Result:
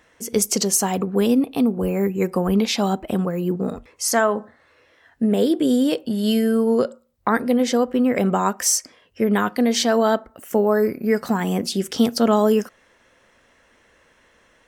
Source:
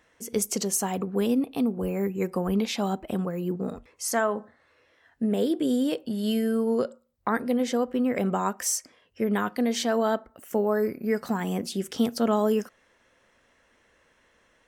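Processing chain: dynamic bell 4.9 kHz, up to +4 dB, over -45 dBFS, Q 1.8; trim +6.5 dB

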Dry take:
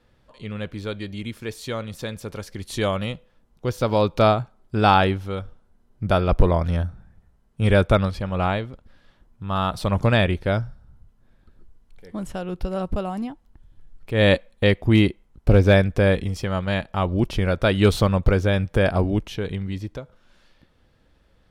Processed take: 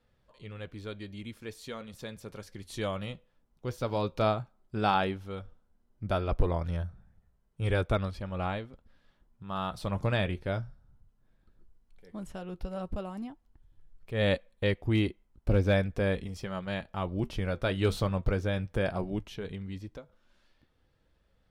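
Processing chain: flange 0.14 Hz, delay 1.4 ms, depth 6 ms, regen -71%; trim -6 dB

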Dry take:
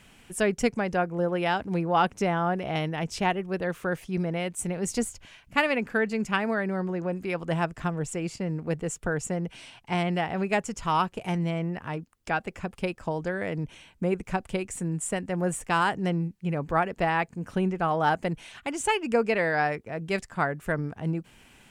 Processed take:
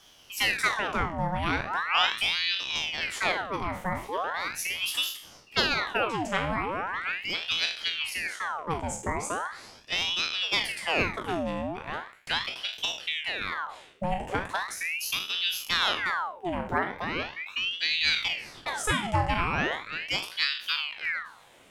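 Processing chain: spectral sustain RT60 0.49 s; 16.78–17.83 s: static phaser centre 2.1 kHz, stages 6; ring modulator with a swept carrier 1.8 kHz, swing 80%, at 0.39 Hz

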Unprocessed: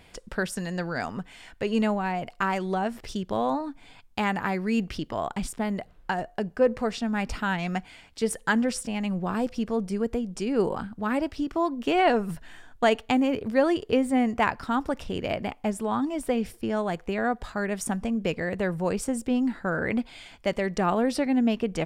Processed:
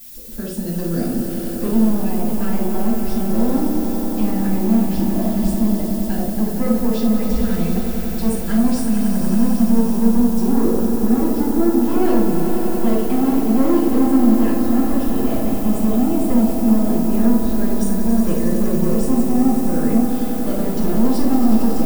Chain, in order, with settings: graphic EQ 250/500/1000/2000 Hz +11/+4/-12/-8 dB; peak limiter -11.5 dBFS, peak gain reduction 6.5 dB; level rider gain up to 12 dB; saturation -10.5 dBFS, distortion -11 dB; added noise violet -30 dBFS; on a send: echo with a slow build-up 92 ms, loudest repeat 5, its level -10 dB; on the sum: simulated room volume 410 m³, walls furnished, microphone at 8.3 m; trim -17 dB

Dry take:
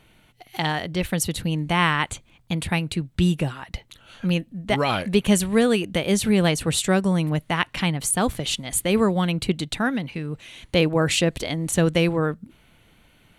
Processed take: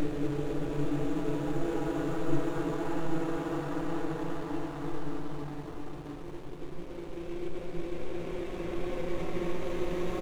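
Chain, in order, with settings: gliding tape speed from 70% -> 192%; low-pass that closes with the level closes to 400 Hz, closed at -17.5 dBFS; full-wave rectifier; treble shelf 3.9 kHz +6.5 dB; band-stop 5.1 kHz, Q 5.1; three bands offset in time lows, mids, highs 60/380 ms, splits 790/3300 Hz; Paulstretch 7.8×, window 1.00 s, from 1.80 s; hysteresis with a dead band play -39 dBFS; trim -1.5 dB

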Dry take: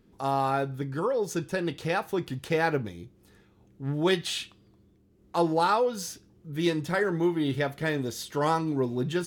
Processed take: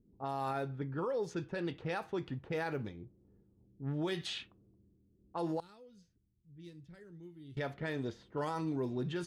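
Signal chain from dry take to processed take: level-controlled noise filter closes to 330 Hz, open at -22.5 dBFS; 5.60–7.57 s: amplifier tone stack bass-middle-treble 10-0-1; peak limiter -22 dBFS, peak gain reduction 9 dB; trim -6 dB

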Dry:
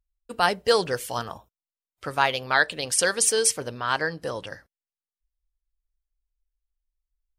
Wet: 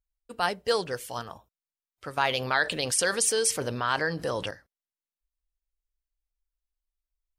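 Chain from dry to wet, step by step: 2.17–4.51 s: level flattener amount 50%; trim -5.5 dB

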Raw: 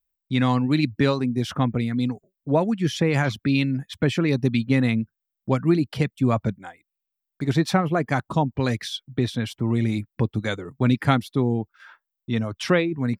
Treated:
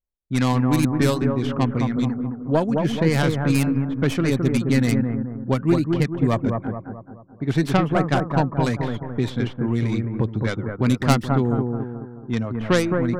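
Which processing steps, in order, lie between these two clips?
tracing distortion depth 0.36 ms; level-controlled noise filter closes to 710 Hz, open at -15.5 dBFS; bucket-brigade echo 215 ms, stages 2048, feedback 46%, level -4 dB

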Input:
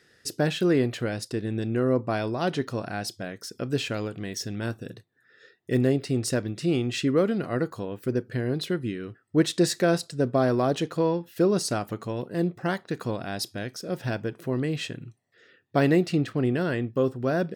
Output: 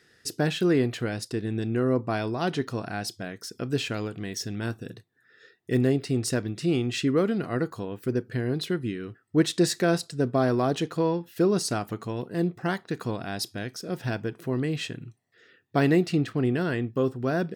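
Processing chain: peaking EQ 560 Hz -6 dB 0.22 oct

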